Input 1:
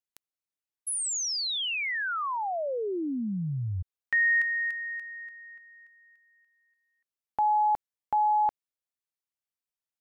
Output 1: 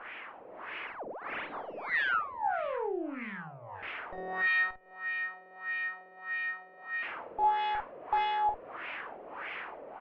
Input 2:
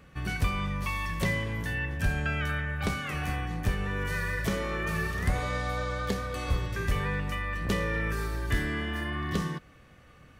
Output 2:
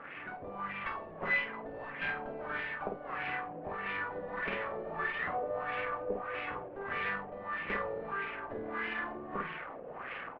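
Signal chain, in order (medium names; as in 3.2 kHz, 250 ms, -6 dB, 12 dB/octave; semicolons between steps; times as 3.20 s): one-bit delta coder 16 kbps, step -31.5 dBFS; reverb removal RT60 0.6 s; high-pass 340 Hz 12 dB/octave; level rider gain up to 5 dB; Chebyshev shaper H 3 -13 dB, 5 -19 dB, 6 -16 dB, 8 -32 dB, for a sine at -14.5 dBFS; doubling 50 ms -3 dB; LFO low-pass sine 1.6 Hz 540–2400 Hz; trim -9 dB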